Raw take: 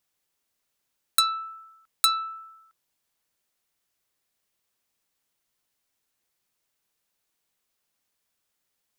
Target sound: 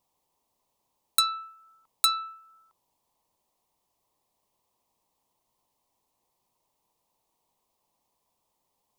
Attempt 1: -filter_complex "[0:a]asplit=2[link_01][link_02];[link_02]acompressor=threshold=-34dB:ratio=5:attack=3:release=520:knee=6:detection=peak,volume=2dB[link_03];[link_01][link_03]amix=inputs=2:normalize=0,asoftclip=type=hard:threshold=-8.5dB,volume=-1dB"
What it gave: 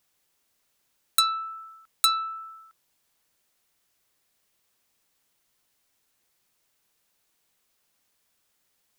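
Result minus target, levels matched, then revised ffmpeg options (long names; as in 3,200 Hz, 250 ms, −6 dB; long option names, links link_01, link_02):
1,000 Hz band +3.5 dB
-filter_complex "[0:a]asplit=2[link_01][link_02];[link_02]acompressor=threshold=-34dB:ratio=5:attack=3:release=520:knee=6:detection=peak,lowpass=frequency=980:width_type=q:width=4.7,volume=2dB[link_03];[link_01][link_03]amix=inputs=2:normalize=0,asoftclip=type=hard:threshold=-8.5dB,volume=-1dB"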